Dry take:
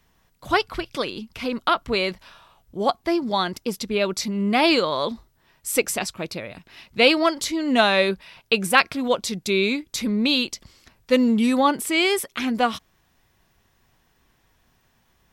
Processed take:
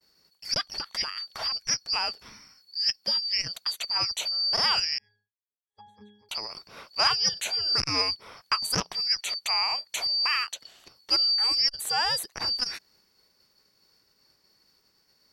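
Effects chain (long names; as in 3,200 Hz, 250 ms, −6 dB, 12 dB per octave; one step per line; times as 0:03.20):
band-splitting scrambler in four parts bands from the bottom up 2341
0:04.98–0:06.29: resonances in every octave G#, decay 0.61 s
in parallel at +3 dB: downward compressor, threshold −30 dBFS, peak gain reduction 18 dB
on the sum: downward expander −52 dBFS
saturating transformer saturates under 1,500 Hz
level −8 dB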